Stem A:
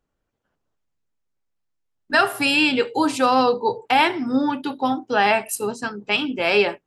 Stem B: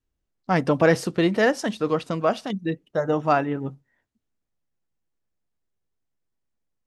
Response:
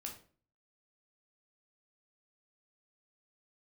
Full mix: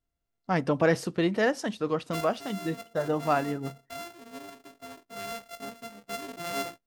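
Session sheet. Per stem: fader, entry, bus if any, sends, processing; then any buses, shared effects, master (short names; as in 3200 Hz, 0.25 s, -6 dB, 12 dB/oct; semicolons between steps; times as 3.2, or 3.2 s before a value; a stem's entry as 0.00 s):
1.98 s -12.5 dB -> 2.3 s -23.5 dB -> 5.06 s -23.5 dB -> 5.58 s -15 dB, 0.00 s, no send, sample sorter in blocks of 64 samples
-5.5 dB, 0.00 s, send -23.5 dB, dry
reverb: on, RT60 0.45 s, pre-delay 11 ms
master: dry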